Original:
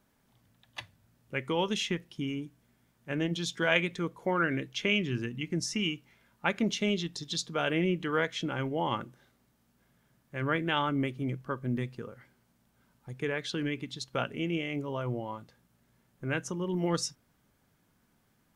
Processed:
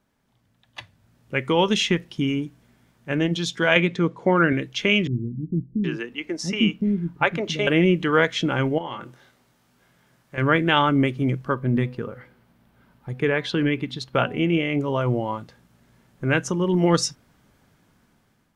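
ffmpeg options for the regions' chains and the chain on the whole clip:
-filter_complex "[0:a]asettb=1/sr,asplit=3[s0][s1][s2];[s0]atrim=end=3.764[s3];[s1]atrim=start=3.76:end=4.53,asetpts=PTS-STARTPTS,afade=t=in:d=0.004:c=qsin,afade=t=out:st=0.766:d=0.004:c=qsin,highpass=110,lowpass=6400,lowshelf=f=420:g=6[s4];[s2]atrim=start=4.526[s5];[s3][s4]acrossfade=d=0.004:c1=hsin:c2=qsin[s6];[s6][s5]acrossfade=d=0.004:c1=qsin:c2=hsin,asettb=1/sr,asplit=3[s7][s8][s9];[s7]atrim=end=5.074[s10];[s8]atrim=start=5.07:end=7.67,asetpts=PTS-STARTPTS,afade=t=in:d=0.004:c=qsin,afade=t=out:st=2.596:d=0.004:c=qsin,equalizer=f=8800:t=o:w=2.3:g=-8,acrossover=split=320[s11][s12];[s12]adelay=770[s13];[s11][s13]amix=inputs=2:normalize=0,atrim=end_sample=114660[s14];[s9]atrim=start=7.666[s15];[s10][s14]acrossfade=d=0.004:c1=hsin:c2=qsin[s16];[s16][s15]acrossfade=d=0.004:c1=qsin:c2=hsin,asettb=1/sr,asplit=3[s17][s18][s19];[s17]atrim=end=8.784[s20];[s18]atrim=start=8.78:end=10.38,asetpts=PTS-STARTPTS,afade=t=in:d=0.004:c=qsin,afade=t=out:st=1.596:d=0.004:c=qsin,lowshelf=f=340:g=-7.5,acompressor=threshold=0.00708:ratio=3:attack=3.2:release=140:knee=1:detection=peak,asplit=2[s21][s22];[s22]adelay=24,volume=0.501[s23];[s21][s23]amix=inputs=2:normalize=0,atrim=end_sample=70560[s24];[s19]atrim=start=10.376[s25];[s20][s24]acrossfade=d=0.004:c1=hsin:c2=qsin[s26];[s26][s25]acrossfade=d=0.004:c1=qsin:c2=hsin,asettb=1/sr,asplit=3[s27][s28][s29];[s27]atrim=end=11.544[s30];[s28]atrim=start=11.54:end=14.81,asetpts=PTS-STARTPTS,afade=t=in:d=0.004:c=qsin,afade=t=out:st=3.266:d=0.004:c=qsin,equalizer=f=7000:t=o:w=1.3:g=-9,bandreject=f=249.2:t=h:w=4,bandreject=f=498.4:t=h:w=4,bandreject=f=747.6:t=h:w=4,bandreject=f=996.8:t=h:w=4,bandreject=f=1246:t=h:w=4[s31];[s29]atrim=start=14.806[s32];[s30][s31]acrossfade=d=0.004:c1=hsin:c2=qsin[s33];[s33][s32]acrossfade=d=0.004:c1=qsin:c2=hsin,highshelf=f=10000:g=-9.5,dynaudnorm=f=450:g=5:m=3.55"

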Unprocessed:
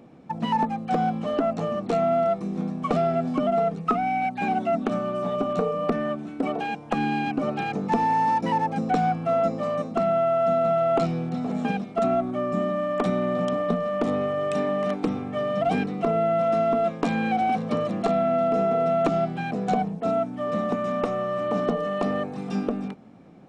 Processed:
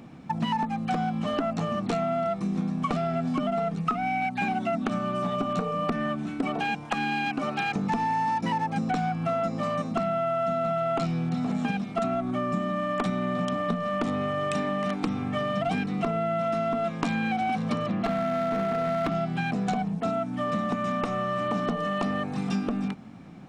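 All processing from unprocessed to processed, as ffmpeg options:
-filter_complex "[0:a]asettb=1/sr,asplit=3[s0][s1][s2];[s0]atrim=end=6.854[s3];[s1]atrim=start=6.85:end=7.76,asetpts=PTS-STARTPTS,afade=t=in:d=0.004:c=qsin,afade=t=out:st=0.906:d=0.004:c=qsin,acompressor=mode=upward:threshold=0.0158:ratio=2.5:attack=3.2:release=140:knee=2.83:detection=peak,lowshelf=f=260:g=-11[s4];[s2]atrim=start=7.756[s5];[s3][s4]acrossfade=d=0.004:c1=hsin:c2=qsin[s6];[s6][s5]acrossfade=d=0.004:c1=qsin:c2=hsin,asettb=1/sr,asplit=3[s7][s8][s9];[s7]atrim=end=17.864[s10];[s8]atrim=start=17.86:end=19.15,asetpts=PTS-STARTPTS,afade=t=in:d=0.004:c=qsin,afade=t=out:st=1.286:d=0.004:c=qsin,lowpass=3500,asoftclip=type=hard:threshold=0.126[s11];[s9]atrim=start=19.146[s12];[s10][s11]acrossfade=d=0.004:c1=hsin:c2=qsin[s13];[s13][s12]acrossfade=d=0.004:c1=qsin:c2=hsin,equalizer=f=480:w=1:g=-10.5,acompressor=threshold=0.0251:ratio=5,volume=2.37"

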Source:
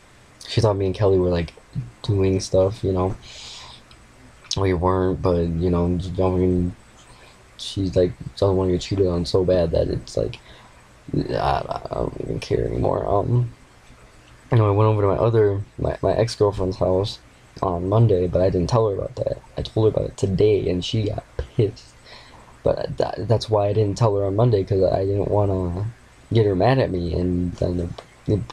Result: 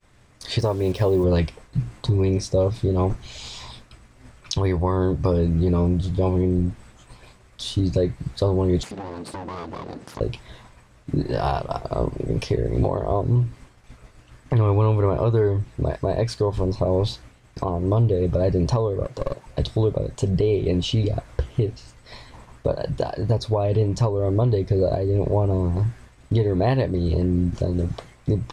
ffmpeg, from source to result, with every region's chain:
-filter_complex "[0:a]asettb=1/sr,asplit=3[s0][s1][s2];[s0]atrim=end=0.594[s3];[s1]atrim=start=0.59:end=1.24,asetpts=PTS-STARTPTS,afade=t=in:d=0.004:c=qsin,afade=t=out:st=0.646:d=0.004:c=qsin,lowshelf=f=120:g=-7.5,acrusher=bits=6:mix=0:aa=0.5[s4];[s2]atrim=start=1.236[s5];[s3][s4]acrossfade=d=0.004:c1=hsin:c2=qsin[s6];[s6][s5]acrossfade=d=0.004:c1=qsin:c2=hsin,asettb=1/sr,asplit=3[s7][s8][s9];[s7]atrim=end=8.834[s10];[s8]atrim=start=8.83:end=10.21,asetpts=PTS-STARTPTS,afade=t=in:d=0.004:c=qsin,afade=t=out:st=1.376:d=0.004:c=qsin,aeval=exprs='abs(val(0))':c=same,acompressor=threshold=0.0447:ratio=4:attack=3.2:release=140:knee=1:detection=peak,highpass=130,lowpass=7900[s11];[s9]atrim=start=10.206[s12];[s10][s11]acrossfade=d=0.004:c1=hsin:c2=qsin[s13];[s13][s12]acrossfade=d=0.004:c1=qsin:c2=hsin,asettb=1/sr,asplit=3[s14][s15][s16];[s14]atrim=end=19.044[s17];[s15]atrim=start=19.04:end=19.46,asetpts=PTS-STARTPTS,afade=t=in:d=0.004:c=qsin,afade=t=out:st=0.416:d=0.004:c=qsin,highpass=180,aeval=exprs='clip(val(0),-1,0.0316)':c=same[s18];[s16]atrim=start=19.456[s19];[s17][s18]acrossfade=d=0.004:c1=hsin:c2=qsin[s20];[s20][s19]acrossfade=d=0.004:c1=qsin:c2=hsin,agate=range=0.0224:threshold=0.00794:ratio=3:detection=peak,lowshelf=f=180:g=7,alimiter=limit=0.282:level=0:latency=1:release=332"

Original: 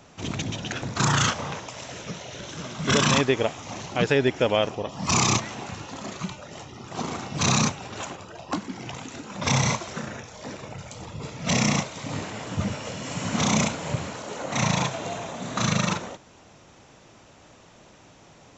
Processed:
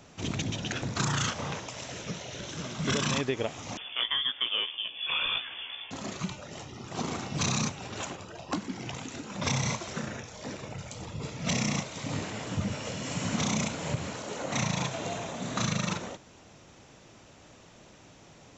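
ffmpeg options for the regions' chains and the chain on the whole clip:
-filter_complex "[0:a]asettb=1/sr,asplit=3[s0][s1][s2];[s0]atrim=end=3.774[s3];[s1]atrim=start=3.77:end=5.91,asetpts=PTS-STARTPTS,afade=t=in:d=0.004:c=qsin,afade=t=out:st=2.136:d=0.004:c=qsin,lowpass=f=3100:t=q:w=0.5098,lowpass=f=3100:t=q:w=0.6013,lowpass=f=3100:t=q:w=0.9,lowpass=f=3100:t=q:w=2.563,afreqshift=-3600,flanger=delay=15:depth=3.7:speed=1.1[s4];[s2]atrim=start=5.906[s5];[s3][s4]acrossfade=d=0.004:c1=hsin:c2=qsin[s6];[s6][s5]acrossfade=d=0.004:c1=qsin:c2=hsin,equalizer=f=960:t=o:w=1.6:g=-3,acompressor=threshold=0.0562:ratio=4,volume=0.891"

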